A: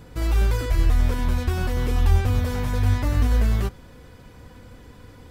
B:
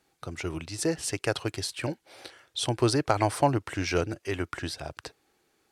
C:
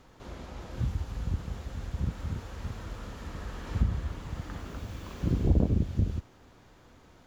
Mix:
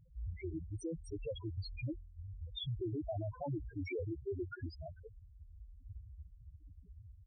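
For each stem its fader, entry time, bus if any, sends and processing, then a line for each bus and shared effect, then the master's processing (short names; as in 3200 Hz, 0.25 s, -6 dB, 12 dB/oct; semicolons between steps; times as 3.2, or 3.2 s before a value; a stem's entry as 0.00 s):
-11.0 dB, 0.00 s, no send, negative-ratio compressor -21 dBFS, ratio -0.5; auto duck -11 dB, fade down 0.30 s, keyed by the second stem
0.0 dB, 0.00 s, no send, Wiener smoothing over 15 samples; LPF 8000 Hz 12 dB/oct
-11.5 dB, 2.15 s, no send, compressor, threshold -32 dBFS, peak gain reduction 13.5 dB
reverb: off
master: loudest bins only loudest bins 2; limiter -33 dBFS, peak gain reduction 14 dB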